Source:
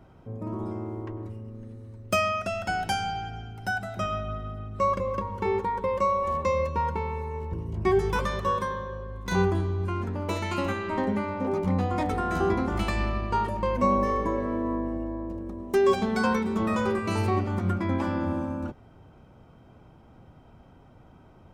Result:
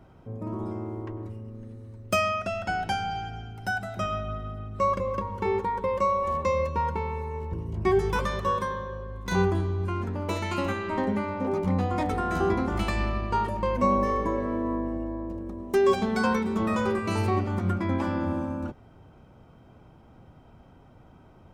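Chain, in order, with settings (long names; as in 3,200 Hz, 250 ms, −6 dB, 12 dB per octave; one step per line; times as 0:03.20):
0:02.34–0:03.10: high-shelf EQ 10,000 Hz → 5,100 Hz −11.5 dB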